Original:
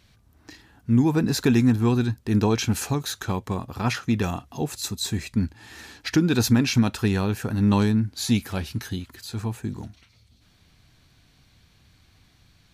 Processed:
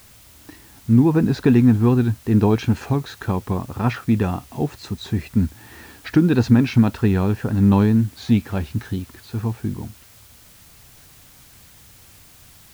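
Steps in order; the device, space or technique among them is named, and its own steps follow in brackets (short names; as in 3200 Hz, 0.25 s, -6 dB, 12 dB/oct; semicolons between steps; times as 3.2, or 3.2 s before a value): cassette deck with a dirty head (tape spacing loss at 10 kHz 30 dB; wow and flutter; white noise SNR 29 dB); gain +5.5 dB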